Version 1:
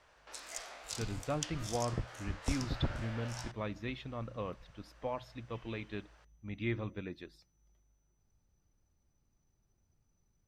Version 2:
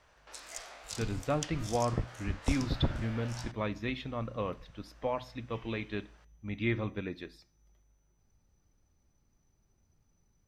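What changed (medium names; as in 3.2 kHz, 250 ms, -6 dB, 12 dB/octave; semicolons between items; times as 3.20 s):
speech +4.0 dB; reverb: on, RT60 0.50 s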